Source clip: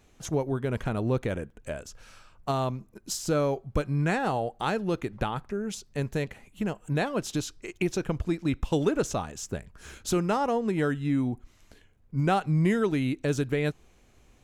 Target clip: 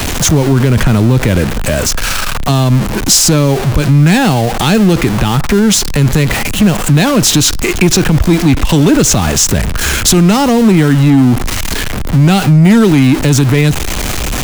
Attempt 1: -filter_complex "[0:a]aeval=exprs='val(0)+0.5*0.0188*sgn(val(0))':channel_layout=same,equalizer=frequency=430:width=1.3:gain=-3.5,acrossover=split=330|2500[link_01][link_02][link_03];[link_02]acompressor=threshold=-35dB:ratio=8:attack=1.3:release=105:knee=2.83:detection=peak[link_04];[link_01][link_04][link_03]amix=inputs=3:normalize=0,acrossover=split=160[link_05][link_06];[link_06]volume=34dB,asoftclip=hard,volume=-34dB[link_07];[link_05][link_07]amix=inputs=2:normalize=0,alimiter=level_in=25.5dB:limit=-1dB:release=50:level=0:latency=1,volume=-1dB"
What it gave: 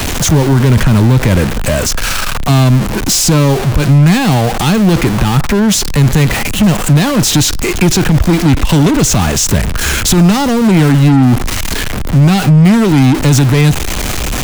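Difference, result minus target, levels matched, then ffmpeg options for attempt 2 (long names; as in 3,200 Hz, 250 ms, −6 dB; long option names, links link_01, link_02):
gain into a clipping stage and back: distortion +9 dB
-filter_complex "[0:a]aeval=exprs='val(0)+0.5*0.0188*sgn(val(0))':channel_layout=same,equalizer=frequency=430:width=1.3:gain=-3.5,acrossover=split=330|2500[link_01][link_02][link_03];[link_02]acompressor=threshold=-35dB:ratio=8:attack=1.3:release=105:knee=2.83:detection=peak[link_04];[link_01][link_04][link_03]amix=inputs=3:normalize=0,acrossover=split=160[link_05][link_06];[link_06]volume=27dB,asoftclip=hard,volume=-27dB[link_07];[link_05][link_07]amix=inputs=2:normalize=0,alimiter=level_in=25.5dB:limit=-1dB:release=50:level=0:latency=1,volume=-1dB"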